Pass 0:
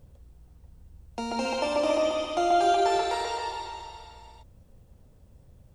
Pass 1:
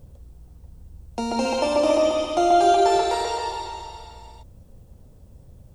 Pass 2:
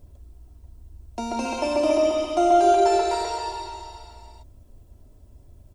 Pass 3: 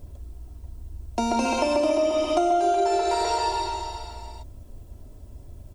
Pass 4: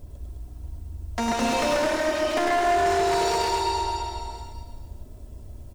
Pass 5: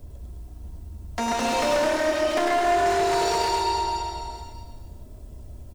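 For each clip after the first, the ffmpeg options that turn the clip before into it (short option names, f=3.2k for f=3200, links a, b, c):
-af "equalizer=f=2k:w=0.64:g=-5.5,volume=7dB"
-af "aecho=1:1:3:0.65,volume=-4dB"
-af "acompressor=threshold=-26dB:ratio=6,volume=6.5dB"
-filter_complex "[0:a]aeval=exprs='0.1*(abs(mod(val(0)/0.1+3,4)-2)-1)':c=same,asplit=2[a][b];[b]aecho=0:1:100|210|331|464.1|610.5:0.631|0.398|0.251|0.158|0.1[c];[a][c]amix=inputs=2:normalize=0"
-filter_complex "[0:a]asplit=2[a][b];[b]adelay=29,volume=-11dB[c];[a][c]amix=inputs=2:normalize=0,acrossover=split=260|1100|2100[d][e][f][g];[d]asoftclip=type=hard:threshold=-34dB[h];[h][e][f][g]amix=inputs=4:normalize=0"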